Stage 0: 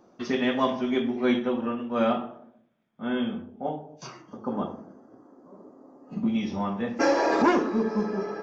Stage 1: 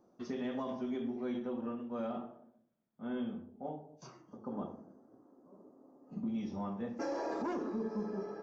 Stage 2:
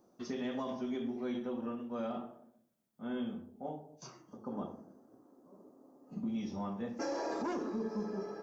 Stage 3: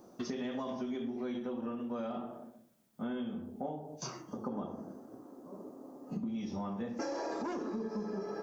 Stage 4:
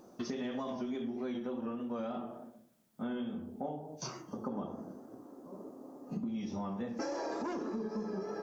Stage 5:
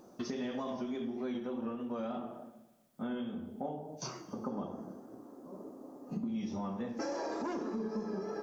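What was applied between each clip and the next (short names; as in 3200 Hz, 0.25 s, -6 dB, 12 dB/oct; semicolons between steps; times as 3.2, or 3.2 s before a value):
bell 2600 Hz -9 dB 2 oct; limiter -20.5 dBFS, peak gain reduction 8 dB; gain -9 dB
high shelf 3900 Hz +9 dB
compressor 6:1, threshold -46 dBFS, peak gain reduction 12 dB; gain +10.5 dB
vibrato 3.4 Hz 34 cents
Schroeder reverb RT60 1.3 s, combs from 28 ms, DRR 13.5 dB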